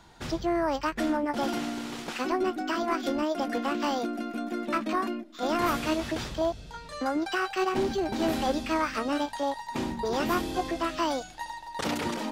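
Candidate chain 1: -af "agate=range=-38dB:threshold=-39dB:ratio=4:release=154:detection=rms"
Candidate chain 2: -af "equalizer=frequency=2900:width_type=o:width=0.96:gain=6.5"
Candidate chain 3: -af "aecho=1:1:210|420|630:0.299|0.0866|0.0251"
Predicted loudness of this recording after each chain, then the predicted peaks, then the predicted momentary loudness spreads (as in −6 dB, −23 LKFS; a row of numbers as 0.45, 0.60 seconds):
−29.5, −29.0, −29.5 LKFS; −15.0, −14.0, −14.5 dBFS; 7, 7, 6 LU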